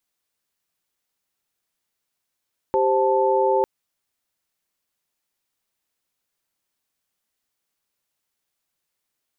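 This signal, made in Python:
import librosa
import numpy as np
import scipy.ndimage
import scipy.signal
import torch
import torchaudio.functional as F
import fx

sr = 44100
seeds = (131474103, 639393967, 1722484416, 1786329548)

y = fx.chord(sr, length_s=0.9, notes=(67, 72, 81), wave='sine', level_db=-20.5)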